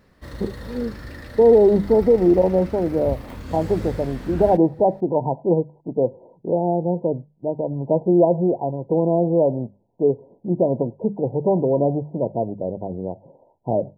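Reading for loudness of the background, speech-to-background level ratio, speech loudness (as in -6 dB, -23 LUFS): -35.5 LUFS, 15.0 dB, -20.5 LUFS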